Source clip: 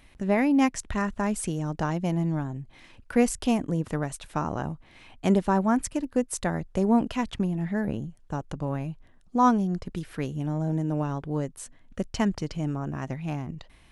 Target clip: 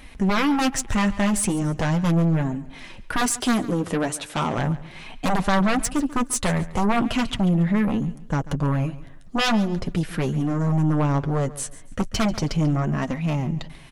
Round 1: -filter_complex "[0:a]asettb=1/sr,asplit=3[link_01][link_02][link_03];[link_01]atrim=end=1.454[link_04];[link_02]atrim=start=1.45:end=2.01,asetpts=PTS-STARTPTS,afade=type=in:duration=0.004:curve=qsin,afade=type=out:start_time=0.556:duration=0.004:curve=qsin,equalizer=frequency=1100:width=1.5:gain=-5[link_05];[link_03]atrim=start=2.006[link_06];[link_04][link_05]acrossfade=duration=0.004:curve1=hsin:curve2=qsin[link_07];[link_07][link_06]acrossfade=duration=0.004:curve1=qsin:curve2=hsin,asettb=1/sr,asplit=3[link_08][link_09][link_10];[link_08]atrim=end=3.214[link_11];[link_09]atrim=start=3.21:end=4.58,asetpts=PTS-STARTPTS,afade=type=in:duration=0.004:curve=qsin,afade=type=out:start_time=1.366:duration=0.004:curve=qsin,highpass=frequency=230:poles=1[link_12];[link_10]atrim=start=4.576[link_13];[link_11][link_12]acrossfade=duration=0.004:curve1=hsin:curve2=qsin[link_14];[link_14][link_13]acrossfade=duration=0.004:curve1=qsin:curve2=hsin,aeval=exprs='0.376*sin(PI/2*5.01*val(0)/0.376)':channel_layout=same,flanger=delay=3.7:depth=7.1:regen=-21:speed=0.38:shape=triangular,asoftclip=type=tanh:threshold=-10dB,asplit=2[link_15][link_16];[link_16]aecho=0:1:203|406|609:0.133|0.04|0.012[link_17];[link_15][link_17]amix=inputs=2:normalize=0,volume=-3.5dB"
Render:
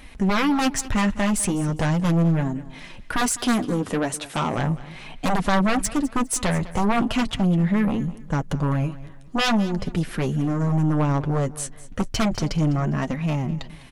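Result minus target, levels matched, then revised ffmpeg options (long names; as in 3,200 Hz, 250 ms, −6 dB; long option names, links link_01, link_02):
echo 63 ms late
-filter_complex "[0:a]asettb=1/sr,asplit=3[link_01][link_02][link_03];[link_01]atrim=end=1.454[link_04];[link_02]atrim=start=1.45:end=2.01,asetpts=PTS-STARTPTS,afade=type=in:duration=0.004:curve=qsin,afade=type=out:start_time=0.556:duration=0.004:curve=qsin,equalizer=frequency=1100:width=1.5:gain=-5[link_05];[link_03]atrim=start=2.006[link_06];[link_04][link_05]acrossfade=duration=0.004:curve1=hsin:curve2=qsin[link_07];[link_07][link_06]acrossfade=duration=0.004:curve1=qsin:curve2=hsin,asettb=1/sr,asplit=3[link_08][link_09][link_10];[link_08]atrim=end=3.214[link_11];[link_09]atrim=start=3.21:end=4.58,asetpts=PTS-STARTPTS,afade=type=in:duration=0.004:curve=qsin,afade=type=out:start_time=1.366:duration=0.004:curve=qsin,highpass=frequency=230:poles=1[link_12];[link_10]atrim=start=4.576[link_13];[link_11][link_12]acrossfade=duration=0.004:curve1=hsin:curve2=qsin[link_14];[link_14][link_13]acrossfade=duration=0.004:curve1=qsin:curve2=hsin,aeval=exprs='0.376*sin(PI/2*5.01*val(0)/0.376)':channel_layout=same,flanger=delay=3.7:depth=7.1:regen=-21:speed=0.38:shape=triangular,asoftclip=type=tanh:threshold=-10dB,asplit=2[link_15][link_16];[link_16]aecho=0:1:140|280|420:0.133|0.04|0.012[link_17];[link_15][link_17]amix=inputs=2:normalize=0,volume=-3.5dB"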